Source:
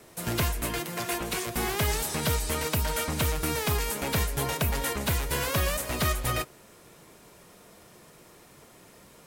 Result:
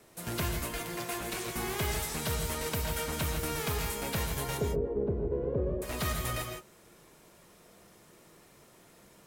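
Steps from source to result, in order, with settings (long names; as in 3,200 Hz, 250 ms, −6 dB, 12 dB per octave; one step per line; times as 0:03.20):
0:04.58–0:05.82: low-pass with resonance 420 Hz, resonance Q 4.9
reverb whose tail is shaped and stops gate 190 ms rising, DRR 3.5 dB
level −6.5 dB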